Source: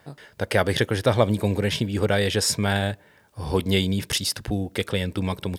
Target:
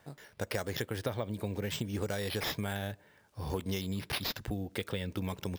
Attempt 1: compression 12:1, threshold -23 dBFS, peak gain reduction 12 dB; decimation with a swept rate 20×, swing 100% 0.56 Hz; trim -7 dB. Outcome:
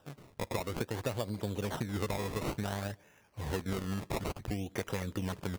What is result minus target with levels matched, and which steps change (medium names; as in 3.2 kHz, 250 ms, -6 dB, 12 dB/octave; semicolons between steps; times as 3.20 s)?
decimation with a swept rate: distortion +6 dB
change: decimation with a swept rate 4×, swing 100% 0.56 Hz